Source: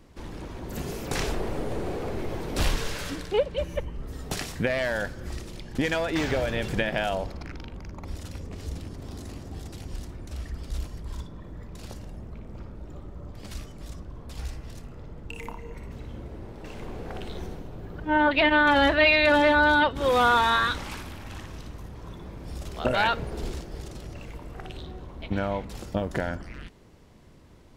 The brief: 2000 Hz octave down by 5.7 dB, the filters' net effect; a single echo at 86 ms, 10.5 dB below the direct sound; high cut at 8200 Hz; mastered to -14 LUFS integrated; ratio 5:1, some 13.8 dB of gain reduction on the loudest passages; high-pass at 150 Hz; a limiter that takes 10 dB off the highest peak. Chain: HPF 150 Hz; LPF 8200 Hz; bell 2000 Hz -8.5 dB; compressor 5:1, threshold -34 dBFS; limiter -30 dBFS; echo 86 ms -10.5 dB; gain +27 dB

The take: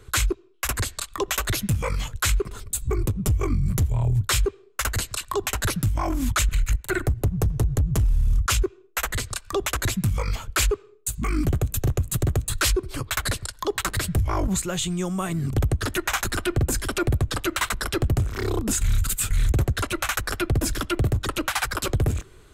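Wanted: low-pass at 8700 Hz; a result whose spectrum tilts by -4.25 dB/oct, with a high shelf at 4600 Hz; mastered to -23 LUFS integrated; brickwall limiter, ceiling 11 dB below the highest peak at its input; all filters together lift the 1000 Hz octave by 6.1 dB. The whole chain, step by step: LPF 8700 Hz; bell 1000 Hz +7.5 dB; high shelf 4600 Hz +5 dB; gain +6.5 dB; limiter -13.5 dBFS

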